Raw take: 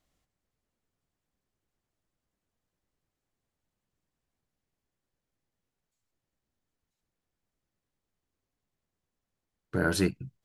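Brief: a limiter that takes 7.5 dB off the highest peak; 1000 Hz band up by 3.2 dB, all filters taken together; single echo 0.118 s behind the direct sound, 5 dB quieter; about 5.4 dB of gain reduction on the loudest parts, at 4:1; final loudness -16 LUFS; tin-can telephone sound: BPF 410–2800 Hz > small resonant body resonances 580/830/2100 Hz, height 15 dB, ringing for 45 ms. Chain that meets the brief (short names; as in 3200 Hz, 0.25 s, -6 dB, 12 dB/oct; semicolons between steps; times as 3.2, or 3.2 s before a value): bell 1000 Hz +5.5 dB; compressor 4:1, threshold -26 dBFS; limiter -22.5 dBFS; BPF 410–2800 Hz; echo 0.118 s -5 dB; small resonant body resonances 580/830/2100 Hz, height 15 dB, ringing for 45 ms; gain +19 dB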